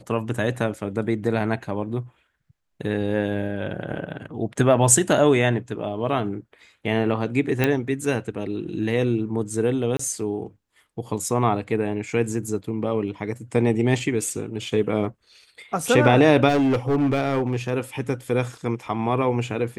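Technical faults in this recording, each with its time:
7.64 s: pop -7 dBFS
9.97–9.99 s: dropout 24 ms
16.48–17.72 s: clipped -16.5 dBFS

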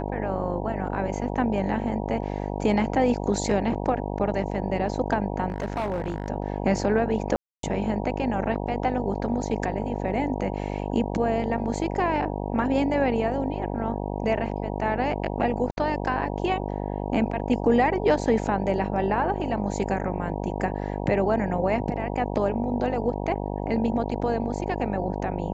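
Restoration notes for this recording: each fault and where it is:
buzz 50 Hz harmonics 19 -30 dBFS
5.50–6.30 s: clipped -23 dBFS
7.36–7.63 s: dropout 273 ms
15.71–15.77 s: dropout 61 ms

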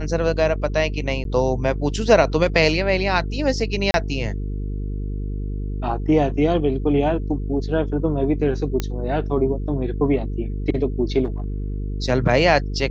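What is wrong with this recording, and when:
buzz 50 Hz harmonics 9 -26 dBFS
1.24–1.25 s: dropout 12 ms
3.91–3.94 s: dropout 31 ms
8.80 s: pop -9 dBFS
11.24–11.78 s: clipped -21.5 dBFS

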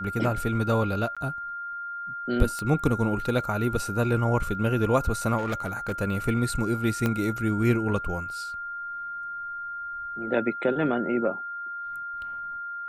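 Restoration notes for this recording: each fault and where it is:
whine 1.4 kHz -32 dBFS
1.15–1.17 s: dropout 16 ms
2.59 s: pop -19 dBFS
5.37–5.92 s: clipped -23.5 dBFS
7.06 s: pop -12 dBFS

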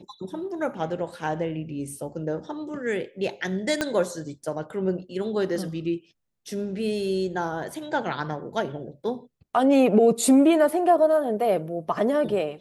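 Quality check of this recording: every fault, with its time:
3.81 s: pop -10 dBFS

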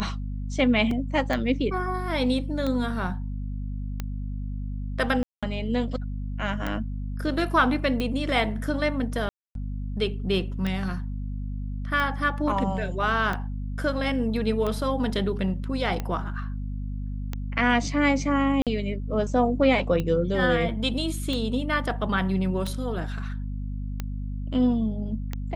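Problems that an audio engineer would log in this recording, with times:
hum 50 Hz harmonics 5 -31 dBFS
tick 45 rpm -16 dBFS
0.91 s: dropout 2.8 ms
5.23–5.43 s: dropout 196 ms
9.29–9.55 s: dropout 262 ms
18.62–18.67 s: dropout 47 ms

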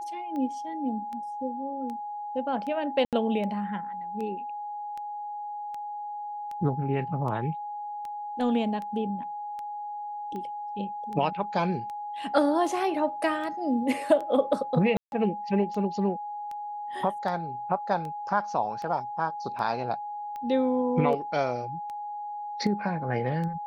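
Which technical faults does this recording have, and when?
tick 78 rpm -26 dBFS
whine 830 Hz -33 dBFS
3.05–3.13 s: dropout 77 ms
14.97–15.12 s: dropout 151 ms

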